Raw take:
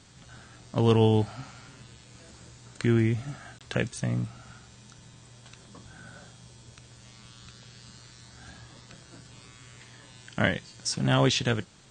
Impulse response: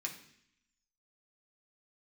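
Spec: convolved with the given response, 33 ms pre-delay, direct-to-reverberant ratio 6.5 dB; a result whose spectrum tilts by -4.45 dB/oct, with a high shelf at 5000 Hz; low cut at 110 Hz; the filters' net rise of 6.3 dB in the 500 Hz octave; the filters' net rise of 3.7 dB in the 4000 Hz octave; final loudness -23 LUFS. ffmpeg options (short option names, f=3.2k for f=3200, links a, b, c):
-filter_complex "[0:a]highpass=110,equalizer=f=500:t=o:g=7.5,equalizer=f=4k:t=o:g=7.5,highshelf=f=5k:g=-6,asplit=2[a][b];[1:a]atrim=start_sample=2205,adelay=33[c];[b][c]afir=irnorm=-1:irlink=0,volume=-6.5dB[d];[a][d]amix=inputs=2:normalize=0,volume=1dB"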